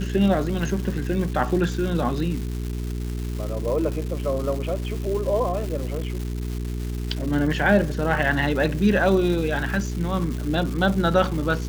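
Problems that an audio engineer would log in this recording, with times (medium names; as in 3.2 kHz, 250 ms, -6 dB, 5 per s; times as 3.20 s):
crackle 480 per s -30 dBFS
hum 60 Hz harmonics 7 -28 dBFS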